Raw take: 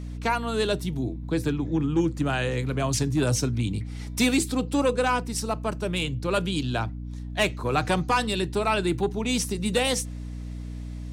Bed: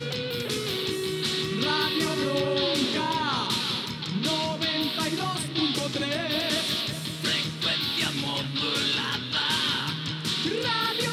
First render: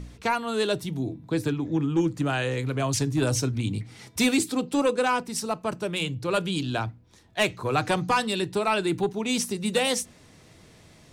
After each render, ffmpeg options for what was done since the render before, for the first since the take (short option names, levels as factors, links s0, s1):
-af "bandreject=f=60:t=h:w=4,bandreject=f=120:t=h:w=4,bandreject=f=180:t=h:w=4,bandreject=f=240:t=h:w=4,bandreject=f=300:t=h:w=4"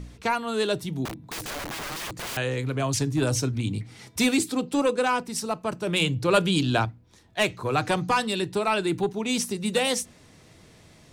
-filter_complex "[0:a]asettb=1/sr,asplit=3[s0][s1][s2];[s0]atrim=end=1.054[s3];[s1]atrim=start=1.05:end=2.37,asetpts=PTS-STARTPTS,afade=t=in:d=0.004:c=qsin,afade=t=out:st=1.316:d=0.004:c=qsin,aeval=exprs='(mod(28.2*val(0)+1,2)-1)/28.2':c=same[s4];[s2]atrim=start=2.366[s5];[s3][s4]acrossfade=d=0.004:c1=hsin:c2=qsin[s6];[s6][s5]acrossfade=d=0.004:c1=qsin:c2=hsin,asplit=3[s7][s8][s9];[s7]atrim=end=5.872[s10];[s8]atrim=start=5.868:end=6.852,asetpts=PTS-STARTPTS,volume=1.78[s11];[s9]atrim=start=6.848[s12];[s10][s11]acrossfade=d=0.004:c1=hsin:c2=hsin[s13];[s13][s12]acrossfade=d=0.004:c1=hsin:c2=hsin"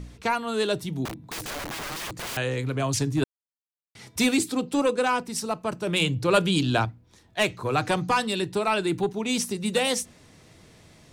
-filter_complex "[0:a]asplit=3[s0][s1][s2];[s0]atrim=end=3.24,asetpts=PTS-STARTPTS,afade=t=out:st=3.236:d=0.004:c=hsin[s3];[s1]atrim=start=3.24:end=3.95,asetpts=PTS-STARTPTS,volume=0[s4];[s2]atrim=start=3.95,asetpts=PTS-STARTPTS,afade=t=in:d=0.004:c=hsin[s5];[s3][s4][s5]concat=n=3:v=0:a=1"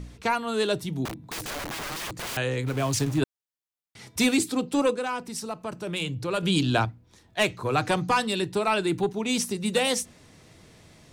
-filter_complex "[0:a]asplit=3[s0][s1][s2];[s0]afade=t=out:st=2.66:d=0.02[s3];[s1]aeval=exprs='val(0)*gte(abs(val(0)),0.0188)':c=same,afade=t=in:st=2.66:d=0.02,afade=t=out:st=3.17:d=0.02[s4];[s2]afade=t=in:st=3.17:d=0.02[s5];[s3][s4][s5]amix=inputs=3:normalize=0,asettb=1/sr,asplit=3[s6][s7][s8];[s6]atrim=end=4.944[s9];[s7]atrim=start=4.94:end=6.43,asetpts=PTS-STARTPTS,afade=t=in:d=0.004:c=qsin,afade=t=out:st=1.486:d=0.004:c=qsin,acompressor=threshold=0.0141:ratio=1.5:attack=3.2:release=140:knee=1:detection=peak[s10];[s8]atrim=start=6.426[s11];[s9][s10]acrossfade=d=0.004:c1=hsin:c2=qsin[s12];[s12][s11]acrossfade=d=0.004:c1=qsin:c2=hsin"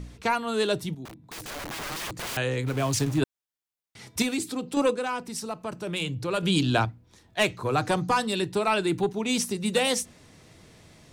-filter_complex "[0:a]asettb=1/sr,asplit=3[s0][s1][s2];[s0]atrim=end=4.224[s3];[s1]atrim=start=4.22:end=4.77,asetpts=PTS-STARTPTS,afade=t=in:d=0.004:c=qsin,afade=t=out:st=0.546:d=0.004:c=qsin,acompressor=threshold=0.0178:ratio=1.5:attack=3.2:release=140:knee=1:detection=peak[s4];[s2]atrim=start=4.766[s5];[s3][s4]acrossfade=d=0.004:c1=hsin:c2=qsin[s6];[s6][s5]acrossfade=d=0.004:c1=qsin:c2=hsin,asettb=1/sr,asplit=3[s7][s8][s9];[s7]atrim=end=7.704[s10];[s8]atrim=start=7.7:end=8.33,asetpts=PTS-STARTPTS,afade=t=in:d=0.004:c=qsin,afade=t=out:st=0.626:d=0.004:c=qsin,equalizer=f=2500:w=1.3:g=-4.5[s11];[s9]atrim=start=8.326[s12];[s10][s11]acrossfade=d=0.004:c1=hsin:c2=qsin[s13];[s13][s12]acrossfade=d=0.004:c1=qsin:c2=hsin,asplit=2[s14][s15];[s14]atrim=end=0.95,asetpts=PTS-STARTPTS,afade=t=out:st=0.946:d=0.004:c=hsin:silence=0.223872[s16];[s15]atrim=start=0.95,asetpts=PTS-STARTPTS,afade=t=in:d=0.97:silence=0.223872[s17];[s16][s17]concat=n=2:v=0:a=1"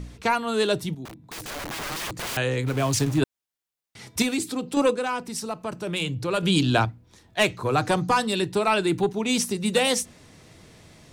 -af "volume=1.33"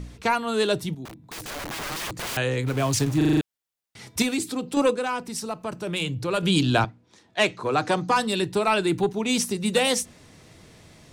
-filter_complex "[0:a]asettb=1/sr,asplit=3[s0][s1][s2];[s0]atrim=end=6.844[s3];[s1]atrim=start=6.84:end=8.16,asetpts=PTS-STARTPTS,afade=t=in:d=0.004:c=qsin,afade=t=out:st=1.316:d=0.004:c=qsin,highpass=180,lowpass=7900[s4];[s2]atrim=start=8.156[s5];[s3][s4]acrossfade=d=0.004:c1=hsin:c2=qsin[s6];[s6][s5]acrossfade=d=0.004:c1=qsin:c2=hsin,asplit=7[s7][s8][s9][s10][s11][s12][s13];[s7]atrim=end=3.212[s14];[s8]atrim=start=3.168:end=3.212[s15];[s9]atrim=start=3.168:end=3.212[s16];[s10]atrim=start=3.168:end=3.212[s17];[s11]atrim=start=3.168:end=3.212[s18];[s12]atrim=start=3.168:end=3.212[s19];[s13]atrim=start=3.408[s20];[s14][s15]acrossfade=d=0.004:c1=hsin:c2=hsin[s21];[s21][s16]acrossfade=d=0.004:c1=hsin:c2=hsin[s22];[s22][s17]acrossfade=d=0.004:c1=hsin:c2=hsin[s23];[s23][s18]acrossfade=d=0.004:c1=hsin:c2=hsin[s24];[s24][s19]acrossfade=d=0.004:c1=hsin:c2=hsin[s25];[s25][s20]acrossfade=d=0.004:c1=hsin:c2=hsin"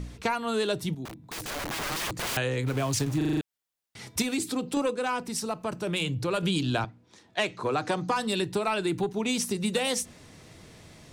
-af "acompressor=threshold=0.0631:ratio=6"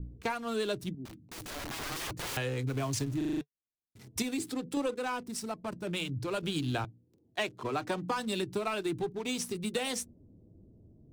-filter_complex "[0:a]acrossover=split=450[s0][s1];[s1]aeval=exprs='sgn(val(0))*max(abs(val(0))-0.0075,0)':c=same[s2];[s0][s2]amix=inputs=2:normalize=0,flanger=delay=2.2:depth=1.3:regen=-69:speed=0.43:shape=triangular"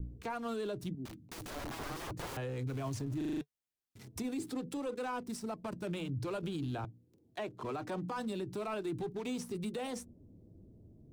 -filter_complex "[0:a]acrossover=split=650|1300[s0][s1][s2];[s2]acompressor=threshold=0.00501:ratio=6[s3];[s0][s1][s3]amix=inputs=3:normalize=0,alimiter=level_in=2.11:limit=0.0631:level=0:latency=1:release=31,volume=0.473"